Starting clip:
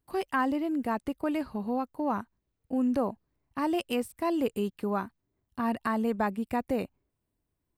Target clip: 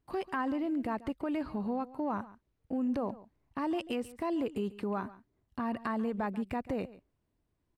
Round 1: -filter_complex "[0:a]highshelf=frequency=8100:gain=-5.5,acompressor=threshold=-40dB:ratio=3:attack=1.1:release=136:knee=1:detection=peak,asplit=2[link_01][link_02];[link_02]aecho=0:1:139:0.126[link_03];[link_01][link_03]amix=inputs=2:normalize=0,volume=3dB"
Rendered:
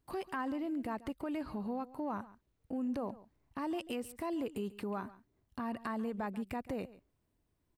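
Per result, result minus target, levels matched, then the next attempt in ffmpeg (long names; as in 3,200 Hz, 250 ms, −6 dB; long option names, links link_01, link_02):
8,000 Hz band +7.5 dB; downward compressor: peak gain reduction +4.5 dB
-filter_complex "[0:a]highshelf=frequency=8100:gain=-17,acompressor=threshold=-40dB:ratio=3:attack=1.1:release=136:knee=1:detection=peak,asplit=2[link_01][link_02];[link_02]aecho=0:1:139:0.126[link_03];[link_01][link_03]amix=inputs=2:normalize=0,volume=3dB"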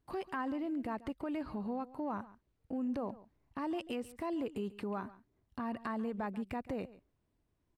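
downward compressor: peak gain reduction +4.5 dB
-filter_complex "[0:a]highshelf=frequency=8100:gain=-17,acompressor=threshold=-33.5dB:ratio=3:attack=1.1:release=136:knee=1:detection=peak,asplit=2[link_01][link_02];[link_02]aecho=0:1:139:0.126[link_03];[link_01][link_03]amix=inputs=2:normalize=0,volume=3dB"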